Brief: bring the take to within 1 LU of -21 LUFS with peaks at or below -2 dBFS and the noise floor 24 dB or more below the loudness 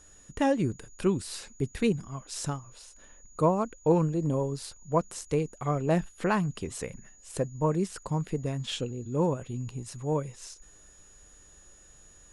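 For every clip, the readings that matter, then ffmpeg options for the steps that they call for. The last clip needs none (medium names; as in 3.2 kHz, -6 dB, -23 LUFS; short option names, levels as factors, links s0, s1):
steady tone 6.8 kHz; tone level -55 dBFS; loudness -30.0 LUFS; peak level -11.5 dBFS; loudness target -21.0 LUFS
-> -af "bandreject=f=6800:w=30"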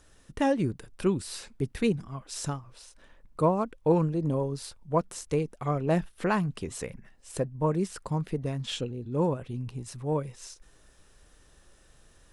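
steady tone not found; loudness -30.0 LUFS; peak level -11.5 dBFS; loudness target -21.0 LUFS
-> -af "volume=2.82"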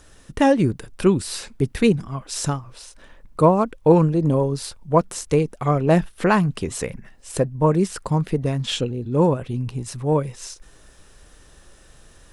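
loudness -21.0 LUFS; peak level -2.5 dBFS; noise floor -50 dBFS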